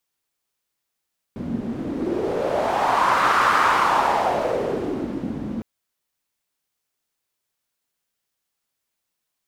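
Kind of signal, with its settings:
wind from filtered noise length 4.26 s, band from 220 Hz, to 1,200 Hz, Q 3.3, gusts 1, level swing 11 dB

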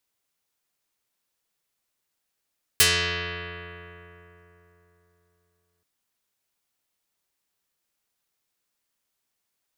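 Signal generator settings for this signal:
Karplus-Strong string F2, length 3.03 s, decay 3.76 s, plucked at 0.33, dark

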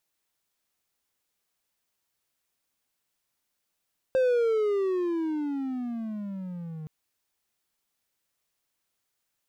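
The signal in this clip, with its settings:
pitch glide with a swell triangle, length 2.72 s, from 528 Hz, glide −21.5 semitones, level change −16 dB, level −17.5 dB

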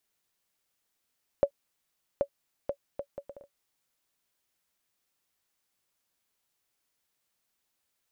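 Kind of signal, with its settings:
bouncing ball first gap 0.78 s, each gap 0.62, 564 Hz, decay 76 ms −12 dBFS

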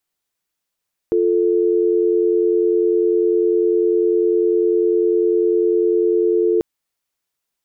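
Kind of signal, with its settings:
call progress tone dial tone, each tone −16 dBFS 5.49 s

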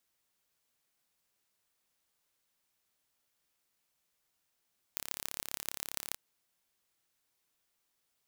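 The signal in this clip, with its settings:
impulse train 34.9 per second, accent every 5, −6.5 dBFS 1.20 s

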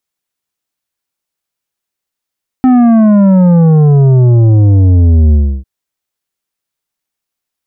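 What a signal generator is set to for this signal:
bass drop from 260 Hz, over 3.00 s, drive 9 dB, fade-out 0.31 s, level −4.5 dB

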